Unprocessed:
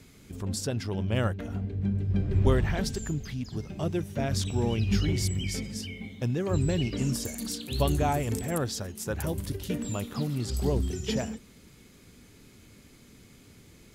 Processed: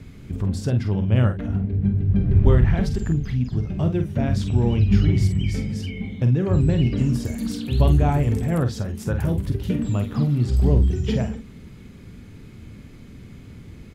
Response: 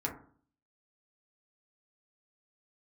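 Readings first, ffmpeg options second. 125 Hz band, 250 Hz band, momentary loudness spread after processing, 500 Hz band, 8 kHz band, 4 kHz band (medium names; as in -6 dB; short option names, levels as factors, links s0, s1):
+10.0 dB, +8.0 dB, 9 LU, +4.0 dB, -6.5 dB, -2.0 dB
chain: -filter_complex "[0:a]bass=f=250:g=9,treble=f=4000:g=-11,asplit=2[s0][s1];[s1]acompressor=threshold=0.0282:ratio=6,volume=0.944[s2];[s0][s2]amix=inputs=2:normalize=0,aecho=1:1:25|48:0.133|0.398"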